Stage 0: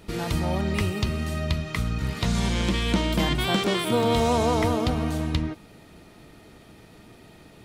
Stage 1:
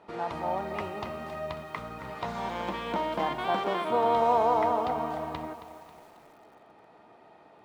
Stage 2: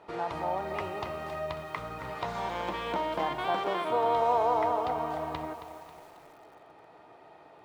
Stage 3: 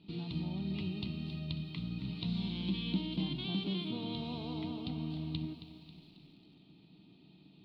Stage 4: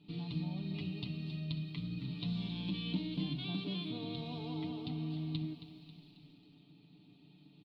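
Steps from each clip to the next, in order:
resonant band-pass 840 Hz, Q 2; four-comb reverb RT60 1.7 s, combs from 32 ms, DRR 19 dB; feedback echo at a low word length 271 ms, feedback 55%, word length 9 bits, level −12 dB; level +4 dB
parametric band 220 Hz −14 dB 0.24 octaves; in parallel at −1.5 dB: downward compressor, threshold −34 dBFS, peak gain reduction 13.5 dB; on the sum: level −3.5 dB
drawn EQ curve 100 Hz 0 dB, 190 Hz +13 dB, 300 Hz +2 dB, 520 Hz −24 dB, 1,800 Hz −26 dB, 2,600 Hz −2 dB, 4,200 Hz +7 dB, 6,200 Hz −23 dB, 11,000 Hz −21 dB
comb filter 6.9 ms, depth 72%; level −3.5 dB

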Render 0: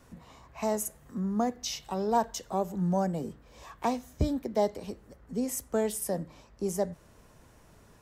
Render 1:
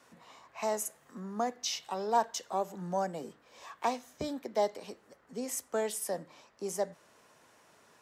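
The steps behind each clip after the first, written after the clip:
meter weighting curve A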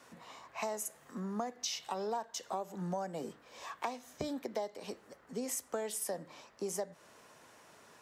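downward compressor 8 to 1, threshold −37 dBFS, peak gain reduction 15.5 dB
level +3 dB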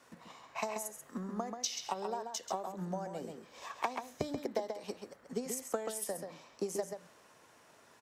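transient designer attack +8 dB, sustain +3 dB
slap from a distant wall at 23 metres, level −6 dB
level −4 dB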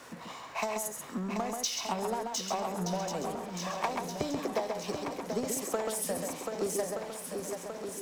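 feedback echo with a long and a short gap by turns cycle 1,224 ms, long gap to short 1.5 to 1, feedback 47%, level −8 dB
power curve on the samples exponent 0.7

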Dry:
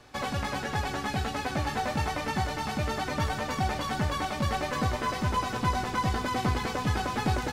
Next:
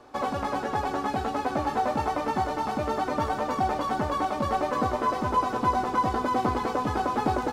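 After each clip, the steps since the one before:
flat-topped bell 560 Hz +11 dB 2.8 octaves
level −5.5 dB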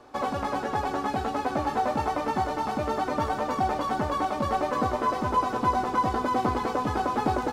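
no processing that can be heard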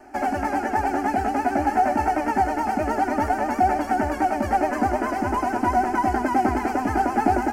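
pitch vibrato 9.3 Hz 68 cents
phaser with its sweep stopped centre 740 Hz, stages 8
level +7.5 dB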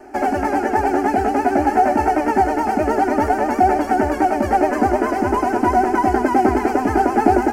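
parametric band 410 Hz +8 dB 0.63 octaves
level +3.5 dB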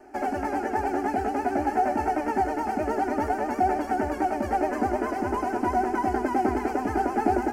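convolution reverb RT60 1.7 s, pre-delay 3 ms, DRR 18 dB
level −9 dB

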